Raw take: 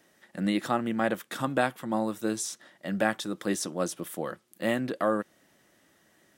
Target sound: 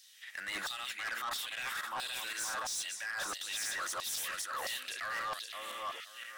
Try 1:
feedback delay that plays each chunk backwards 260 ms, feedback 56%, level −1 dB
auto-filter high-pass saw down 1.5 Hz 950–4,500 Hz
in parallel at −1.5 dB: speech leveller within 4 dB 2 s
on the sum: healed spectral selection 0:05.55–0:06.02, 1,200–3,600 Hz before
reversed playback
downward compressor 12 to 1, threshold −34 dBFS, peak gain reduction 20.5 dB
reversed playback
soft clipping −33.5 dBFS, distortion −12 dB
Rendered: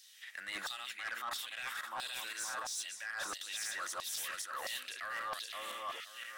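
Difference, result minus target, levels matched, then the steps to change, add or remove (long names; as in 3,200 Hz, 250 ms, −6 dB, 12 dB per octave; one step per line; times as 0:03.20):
downward compressor: peak gain reduction +5.5 dB
change: downward compressor 12 to 1, threshold −28 dBFS, peak gain reduction 15 dB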